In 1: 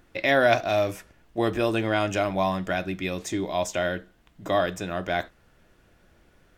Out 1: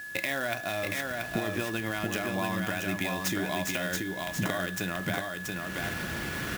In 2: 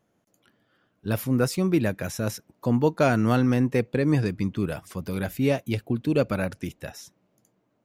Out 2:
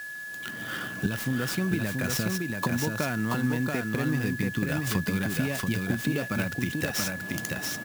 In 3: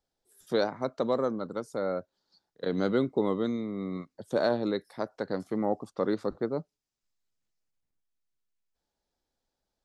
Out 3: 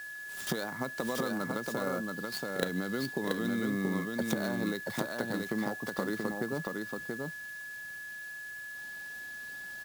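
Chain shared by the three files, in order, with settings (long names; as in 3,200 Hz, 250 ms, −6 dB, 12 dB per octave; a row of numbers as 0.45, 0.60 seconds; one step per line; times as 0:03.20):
camcorder AGC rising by 43 dB per second
high-pass filter 120 Hz 12 dB per octave
parametric band 520 Hz −8.5 dB 1.9 octaves
downward compressor 2.5 to 1, threshold −34 dBFS
steady tone 1,700 Hz −40 dBFS
on a send: single-tap delay 681 ms −3.5 dB
on the sum: converter with an unsteady clock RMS 0.023 ms
normalise the peak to −12 dBFS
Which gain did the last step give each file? +2.0, +4.5, 0.0 decibels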